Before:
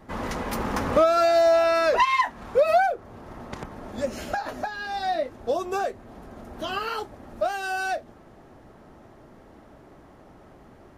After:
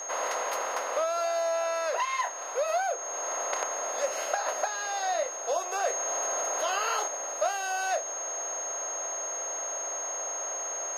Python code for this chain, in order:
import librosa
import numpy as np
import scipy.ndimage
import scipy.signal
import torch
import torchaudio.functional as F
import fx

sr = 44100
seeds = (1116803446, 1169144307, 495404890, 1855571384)

y = fx.bin_compress(x, sr, power=0.6)
y = y + 10.0 ** (-29.0 / 20.0) * np.sin(2.0 * np.pi * 6500.0 * np.arange(len(y)) / sr)
y = fx.rider(y, sr, range_db=4, speed_s=0.5)
y = scipy.signal.sosfilt(scipy.signal.butter(4, 480.0, 'highpass', fs=sr, output='sos'), y)
y = fx.env_flatten(y, sr, amount_pct=50, at=(5.87, 7.08))
y = y * librosa.db_to_amplitude(-7.5)